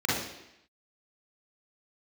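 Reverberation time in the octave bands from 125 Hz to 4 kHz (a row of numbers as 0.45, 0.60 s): 0.70, 0.85, 0.80, 0.85, 0.90, 0.85 s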